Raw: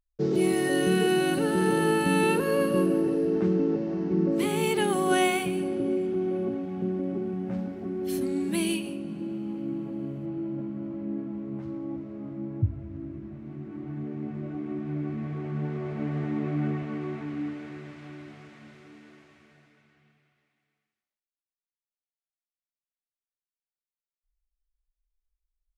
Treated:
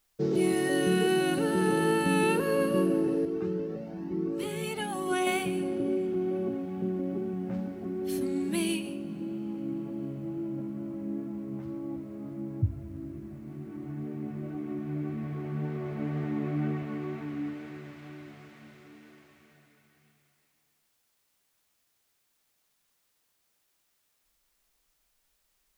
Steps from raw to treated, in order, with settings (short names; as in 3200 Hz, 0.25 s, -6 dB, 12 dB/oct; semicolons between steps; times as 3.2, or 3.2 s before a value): wow and flutter 15 cents; requantised 12-bit, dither triangular; 3.25–5.27 cascading flanger rising 1.1 Hz; gain -2 dB